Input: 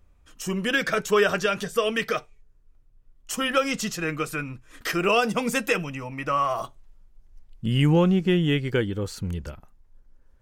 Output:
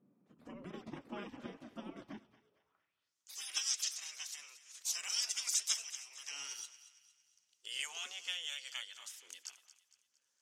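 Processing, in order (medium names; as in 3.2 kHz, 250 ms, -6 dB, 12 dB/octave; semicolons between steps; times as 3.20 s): spectral gate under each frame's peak -20 dB weak; band-pass sweep 220 Hz -> 6.3 kHz, 2.32–3.15 s; thinning echo 229 ms, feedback 45%, high-pass 850 Hz, level -14.5 dB; trim +8.5 dB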